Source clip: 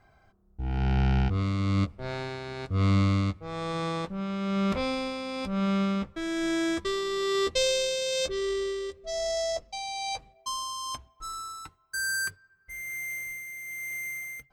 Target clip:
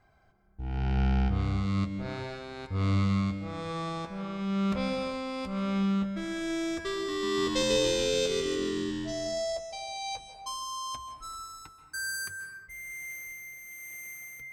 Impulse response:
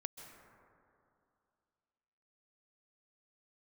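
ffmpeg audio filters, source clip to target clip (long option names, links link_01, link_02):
-filter_complex "[0:a]asettb=1/sr,asplit=3[link_01][link_02][link_03];[link_01]atrim=end=6.944[link_04];[link_02]atrim=start=6.94:end=9.12,asetpts=PTS-STARTPTS,afade=type=in:duration=0.004:curve=qsin,afade=type=out:start_time=2.176:duration=0.004:curve=qsin,asplit=9[link_05][link_06][link_07][link_08][link_09][link_10][link_11][link_12][link_13];[link_06]adelay=144,afreqshift=-88,volume=-3.5dB[link_14];[link_07]adelay=288,afreqshift=-176,volume=-8.1dB[link_15];[link_08]adelay=432,afreqshift=-264,volume=-12.7dB[link_16];[link_09]adelay=576,afreqshift=-352,volume=-17.2dB[link_17];[link_10]adelay=720,afreqshift=-440,volume=-21.8dB[link_18];[link_11]adelay=864,afreqshift=-528,volume=-26.4dB[link_19];[link_12]adelay=1008,afreqshift=-616,volume=-31dB[link_20];[link_13]adelay=1152,afreqshift=-704,volume=-35.6dB[link_21];[link_05][link_14][link_15][link_16][link_17][link_18][link_19][link_20][link_21]amix=inputs=9:normalize=0,atrim=end_sample=96138[link_22];[link_03]atrim=start=9.116[link_23];[link_04][link_22]acrossfade=duration=0.004:curve1=hsin:curve2=qsin[link_24];[link_24][link_23]acrossfade=duration=0.004:curve1=qsin:curve2=hsin[link_25];[1:a]atrim=start_sample=2205,afade=type=out:start_time=0.45:duration=0.01,atrim=end_sample=20286[link_26];[link_25][link_26]afir=irnorm=-1:irlink=0"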